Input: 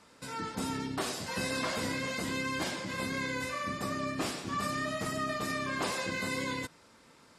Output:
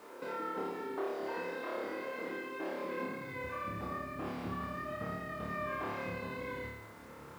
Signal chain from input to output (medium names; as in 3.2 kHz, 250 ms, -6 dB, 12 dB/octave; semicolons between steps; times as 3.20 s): high-pass sweep 380 Hz -> 63 Hz, 2.92–3.50 s; compression 10:1, threshold -43 dBFS, peak gain reduction 17.5 dB; low-pass 1.8 kHz 12 dB/octave; on a send: flutter echo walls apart 4.8 m, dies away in 0.93 s; on the sum: bit crusher 11-bit; trim +4.5 dB